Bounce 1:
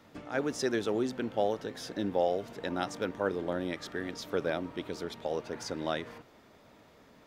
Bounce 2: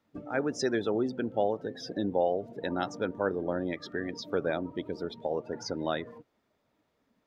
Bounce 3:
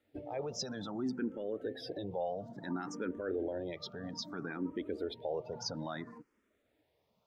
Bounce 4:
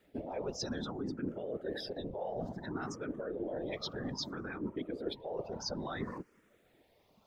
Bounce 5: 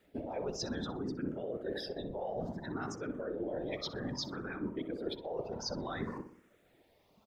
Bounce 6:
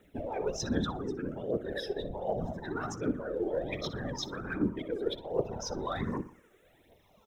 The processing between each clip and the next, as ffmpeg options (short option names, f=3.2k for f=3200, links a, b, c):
-filter_complex "[0:a]afftdn=nr=22:nf=-41,asplit=2[a][b];[b]acompressor=threshold=-39dB:ratio=6,volume=-2.5dB[c];[a][c]amix=inputs=2:normalize=0"
-filter_complex "[0:a]alimiter=level_in=2.5dB:limit=-24dB:level=0:latency=1:release=27,volume=-2.5dB,asplit=2[a][b];[b]afreqshift=0.6[c];[a][c]amix=inputs=2:normalize=1,volume=1dB"
-af "areverse,acompressor=threshold=-44dB:ratio=10,areverse,afftfilt=real='hypot(re,im)*cos(2*PI*random(0))':imag='hypot(re,im)*sin(2*PI*random(1))':win_size=512:overlap=0.75,volume=15dB"
-filter_complex "[0:a]asplit=2[a][b];[b]adelay=62,lowpass=f=1.9k:p=1,volume=-9dB,asplit=2[c][d];[d]adelay=62,lowpass=f=1.9k:p=1,volume=0.46,asplit=2[e][f];[f]adelay=62,lowpass=f=1.9k:p=1,volume=0.46,asplit=2[g][h];[h]adelay=62,lowpass=f=1.9k:p=1,volume=0.46,asplit=2[i][j];[j]adelay=62,lowpass=f=1.9k:p=1,volume=0.46[k];[a][c][e][g][i][k]amix=inputs=6:normalize=0"
-af "asuperstop=centerf=4600:order=4:qfactor=4.4,aphaser=in_gain=1:out_gain=1:delay=2.7:decay=0.58:speed=1.3:type=triangular,volume=3dB"